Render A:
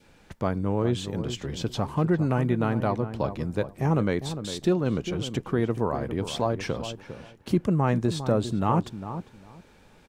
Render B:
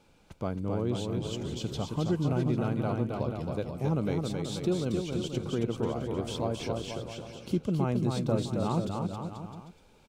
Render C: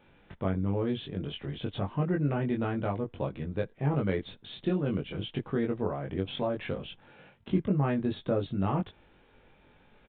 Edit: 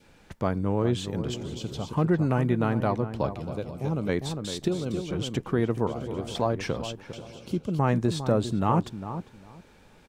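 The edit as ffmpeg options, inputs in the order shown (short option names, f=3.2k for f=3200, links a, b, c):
-filter_complex "[1:a]asplit=5[a][b][c][d][e];[0:a]asplit=6[f][g][h][i][j][k];[f]atrim=end=1.342[l];[a]atrim=start=1.338:end=1.932[m];[g]atrim=start=1.928:end=3.362[n];[b]atrim=start=3.358:end=4.092[o];[h]atrim=start=4.088:end=4.682[p];[c]atrim=start=4.678:end=5.112[q];[i]atrim=start=5.108:end=5.872[r];[d]atrim=start=5.868:end=6.352[s];[j]atrim=start=6.348:end=7.132[t];[e]atrim=start=7.128:end=7.792[u];[k]atrim=start=7.788[v];[l][m]acrossfade=d=0.004:c1=hsin:c2=hsin[w];[w][n]acrossfade=d=0.004:c1=hsin:c2=hsin[x];[x][o]acrossfade=d=0.004:c1=hsin:c2=hsin[y];[y][p]acrossfade=d=0.004:c1=hsin:c2=hsin[z];[z][q]acrossfade=d=0.004:c1=hsin:c2=hsin[aa];[aa][r]acrossfade=d=0.004:c1=hsin:c2=hsin[ab];[ab][s]acrossfade=d=0.004:c1=hsin:c2=hsin[ac];[ac][t]acrossfade=d=0.004:c1=hsin:c2=hsin[ad];[ad][u]acrossfade=d=0.004:c1=hsin:c2=hsin[ae];[ae][v]acrossfade=d=0.004:c1=hsin:c2=hsin"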